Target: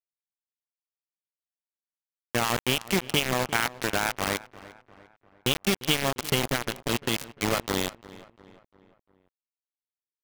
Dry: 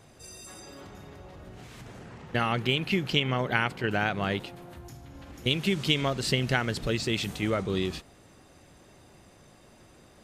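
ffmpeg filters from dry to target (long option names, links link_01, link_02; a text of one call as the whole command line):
ffmpeg -i in.wav -filter_complex "[0:a]asettb=1/sr,asplit=3[link_01][link_02][link_03];[link_01]atrim=end=6.434[link_04];[link_02]atrim=start=6.43:end=7.38,asetpts=PTS-STARTPTS,afade=type=in:duration=0.004:curve=qsin,afade=type=out:start_time=0.946:duration=0.004:curve=qsin,acrossover=split=350|3000[link_05][link_06][link_07];[link_06]acompressor=threshold=-28dB:ratio=2.5[link_08];[link_05][link_08][link_07]amix=inputs=3:normalize=0[link_09];[link_03]atrim=start=7.376[link_10];[link_04][link_09]acrossfade=duration=0.004:curve1=hsin:curve2=qsin[link_11];[link_11][link_10]acrossfade=duration=0.004:curve1=qsin:curve2=hsin,acrusher=bits=3:mix=0:aa=0.000001,asplit=2[link_12][link_13];[link_13]adelay=349,lowpass=frequency=2700:poles=1,volume=-18dB,asplit=2[link_14][link_15];[link_15]adelay=349,lowpass=frequency=2700:poles=1,volume=0.49,asplit=2[link_16][link_17];[link_17]adelay=349,lowpass=frequency=2700:poles=1,volume=0.49,asplit=2[link_18][link_19];[link_19]adelay=349,lowpass=frequency=2700:poles=1,volume=0.49[link_20];[link_12][link_14][link_16][link_18][link_20]amix=inputs=5:normalize=0" out.wav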